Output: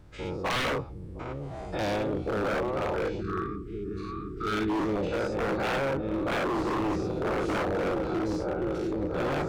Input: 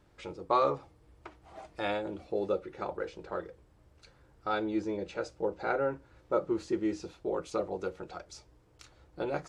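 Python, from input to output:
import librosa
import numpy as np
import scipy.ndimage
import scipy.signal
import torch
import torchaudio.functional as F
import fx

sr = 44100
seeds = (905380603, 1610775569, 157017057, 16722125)

p1 = fx.spec_dilate(x, sr, span_ms=120)
p2 = p1 + fx.echo_opening(p1, sr, ms=707, hz=200, octaves=1, feedback_pct=70, wet_db=-3, dry=0)
p3 = fx.dynamic_eq(p2, sr, hz=7100.0, q=0.87, threshold_db=-56.0, ratio=4.0, max_db=-8)
p4 = fx.brickwall_bandstop(p3, sr, low_hz=450.0, high_hz=1100.0, at=(3.2, 4.78), fade=0.02)
p5 = fx.low_shelf(p4, sr, hz=220.0, db=11.0)
y = 10.0 ** (-23.0 / 20.0) * (np.abs((p5 / 10.0 ** (-23.0 / 20.0) + 3.0) % 4.0 - 2.0) - 1.0)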